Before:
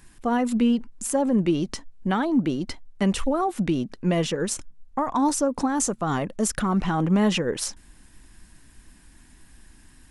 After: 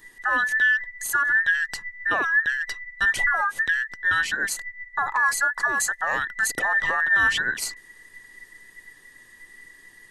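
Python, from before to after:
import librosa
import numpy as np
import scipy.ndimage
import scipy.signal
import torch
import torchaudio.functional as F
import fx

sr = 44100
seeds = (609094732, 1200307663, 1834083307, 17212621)

y = fx.band_invert(x, sr, width_hz=2000)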